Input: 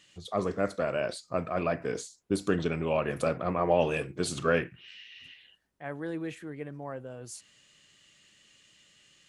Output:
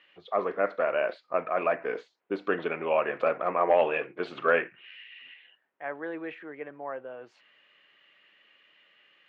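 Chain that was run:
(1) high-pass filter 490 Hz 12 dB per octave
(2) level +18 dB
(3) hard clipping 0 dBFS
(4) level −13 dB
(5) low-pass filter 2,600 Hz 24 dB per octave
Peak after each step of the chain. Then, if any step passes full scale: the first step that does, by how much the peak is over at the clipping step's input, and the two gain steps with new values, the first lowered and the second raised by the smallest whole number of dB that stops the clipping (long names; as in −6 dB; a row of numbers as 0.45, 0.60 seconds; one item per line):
−14.0, +4.0, 0.0, −13.0, −12.0 dBFS
step 2, 4.0 dB
step 2 +14 dB, step 4 −9 dB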